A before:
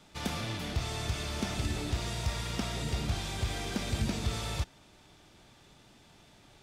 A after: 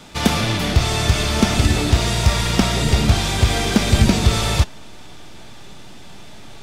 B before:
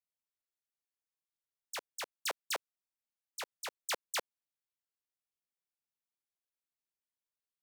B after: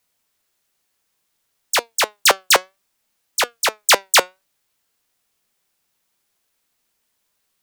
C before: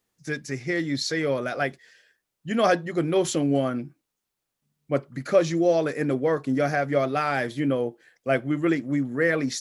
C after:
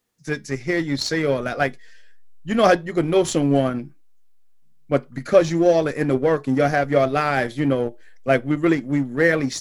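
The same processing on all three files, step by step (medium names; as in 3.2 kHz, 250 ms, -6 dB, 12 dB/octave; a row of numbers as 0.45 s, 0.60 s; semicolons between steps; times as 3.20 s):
flange 0.59 Hz, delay 4 ms, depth 1.5 ms, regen +85%; in parallel at -3.5 dB: hysteresis with a dead band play -24 dBFS; on the sum: peak normalisation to -3 dBFS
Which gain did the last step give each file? +20.5 dB, +27.5 dB, +6.0 dB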